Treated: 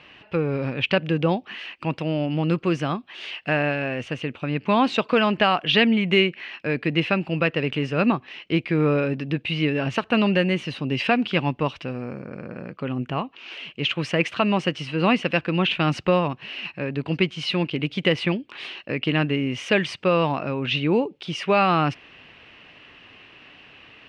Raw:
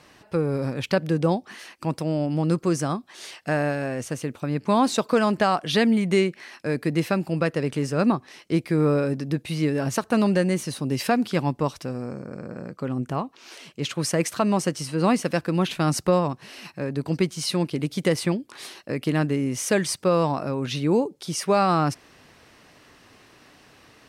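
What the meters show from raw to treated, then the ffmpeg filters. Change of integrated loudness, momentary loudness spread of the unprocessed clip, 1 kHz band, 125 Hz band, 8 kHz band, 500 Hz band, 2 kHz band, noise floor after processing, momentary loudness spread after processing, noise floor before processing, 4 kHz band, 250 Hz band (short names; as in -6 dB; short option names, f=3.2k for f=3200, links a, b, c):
+1.0 dB, 11 LU, +1.0 dB, 0.0 dB, under -10 dB, +0.5 dB, +6.5 dB, -52 dBFS, 11 LU, -55 dBFS, +6.5 dB, 0.0 dB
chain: -af "lowpass=f=2.8k:t=q:w=4.5"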